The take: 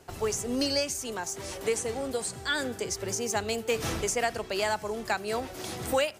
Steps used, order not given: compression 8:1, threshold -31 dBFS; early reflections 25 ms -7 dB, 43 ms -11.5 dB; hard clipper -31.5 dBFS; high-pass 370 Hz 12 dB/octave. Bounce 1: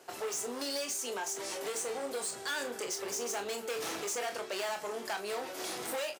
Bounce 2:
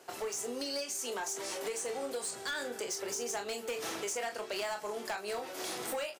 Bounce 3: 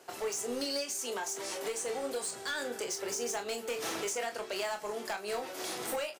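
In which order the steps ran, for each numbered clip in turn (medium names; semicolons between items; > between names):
hard clipper > early reflections > compression > high-pass; early reflections > compression > high-pass > hard clipper; high-pass > compression > hard clipper > early reflections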